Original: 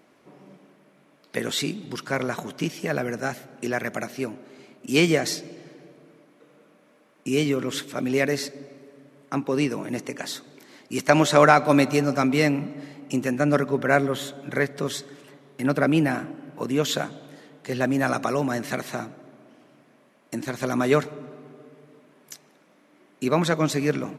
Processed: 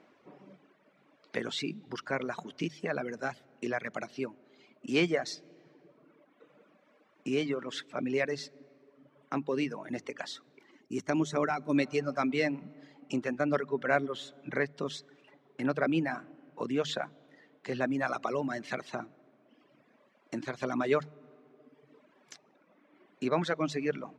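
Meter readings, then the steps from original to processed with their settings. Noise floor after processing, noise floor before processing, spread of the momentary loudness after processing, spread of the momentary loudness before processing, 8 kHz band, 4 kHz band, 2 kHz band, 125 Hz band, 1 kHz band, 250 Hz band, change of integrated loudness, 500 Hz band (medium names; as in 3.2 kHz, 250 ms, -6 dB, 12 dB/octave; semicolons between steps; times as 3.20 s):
-67 dBFS, -59 dBFS, 13 LU, 15 LU, -15.0 dB, -9.0 dB, -8.5 dB, -12.5 dB, -10.0 dB, -8.5 dB, -9.0 dB, -8.5 dB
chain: reverb removal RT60 1.3 s; hum notches 50/100/150 Hz; time-frequency box 10.71–11.75 s, 450–5400 Hz -9 dB; bass shelf 130 Hz -7.5 dB; in parallel at -0.5 dB: compression, threshold -35 dBFS, peak gain reduction 19 dB; on the sum: distance through air 120 m; trim -7 dB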